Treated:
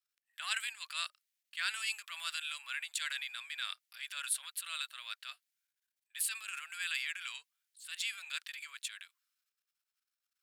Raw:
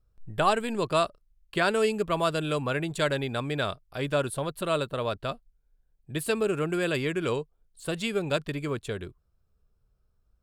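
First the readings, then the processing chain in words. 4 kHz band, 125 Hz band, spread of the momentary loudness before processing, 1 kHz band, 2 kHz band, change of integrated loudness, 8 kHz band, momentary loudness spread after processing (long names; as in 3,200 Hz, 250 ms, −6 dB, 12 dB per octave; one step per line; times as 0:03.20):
−2.5 dB, below −40 dB, 10 LU, −18.5 dB, −5.5 dB, −9.5 dB, +2.0 dB, 11 LU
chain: transient designer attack −8 dB, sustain +8 dB
inverse Chebyshev high-pass filter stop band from 300 Hz, stop band 80 dB
level −1 dB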